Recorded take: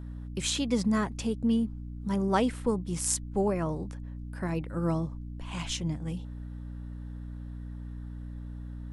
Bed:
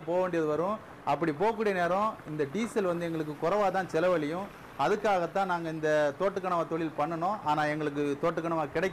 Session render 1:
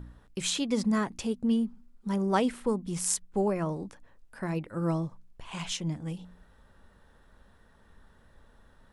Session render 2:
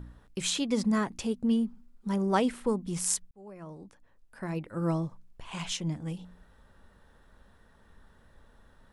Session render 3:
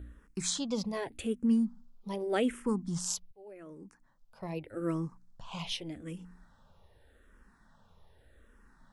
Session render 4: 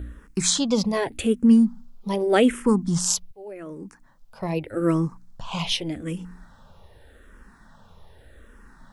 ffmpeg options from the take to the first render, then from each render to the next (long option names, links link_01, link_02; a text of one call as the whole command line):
ffmpeg -i in.wav -af "bandreject=frequency=60:width_type=h:width=4,bandreject=frequency=120:width_type=h:width=4,bandreject=frequency=180:width_type=h:width=4,bandreject=frequency=240:width_type=h:width=4,bandreject=frequency=300:width_type=h:width=4" out.wav
ffmpeg -i in.wav -filter_complex "[0:a]asplit=2[link_01][link_02];[link_01]atrim=end=3.31,asetpts=PTS-STARTPTS,afade=type=out:start_time=3.306:duration=0.004:curve=hsin[link_03];[link_02]atrim=start=3.31,asetpts=PTS-STARTPTS,afade=type=in:duration=1.57[link_04];[link_03][link_04]concat=n=2:v=0:a=1" out.wav
ffmpeg -i in.wav -filter_complex "[0:a]asplit=2[link_01][link_02];[link_02]afreqshift=-0.84[link_03];[link_01][link_03]amix=inputs=2:normalize=1" out.wav
ffmpeg -i in.wav -af "volume=11.5dB" out.wav